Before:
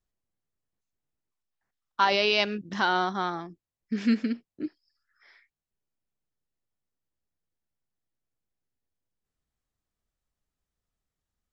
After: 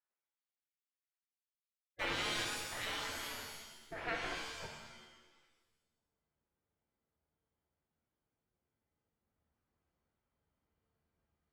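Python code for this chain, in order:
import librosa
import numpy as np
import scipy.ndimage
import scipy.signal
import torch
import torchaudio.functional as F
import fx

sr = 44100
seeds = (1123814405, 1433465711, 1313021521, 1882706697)

p1 = fx.diode_clip(x, sr, knee_db=-14.0)
p2 = scipy.signal.sosfilt(scipy.signal.butter(2, 1300.0, 'lowpass', fs=sr, output='sos'), p1)
p3 = fx.backlash(p2, sr, play_db=-32.5)
p4 = p2 + F.gain(torch.from_numpy(p3), -5.5).numpy()
p5 = fx.spec_gate(p4, sr, threshold_db=-25, keep='weak')
p6 = fx.rev_shimmer(p5, sr, seeds[0], rt60_s=1.0, semitones=7, shimmer_db=-2, drr_db=1.5)
y = F.gain(torch.from_numpy(p6), 2.5).numpy()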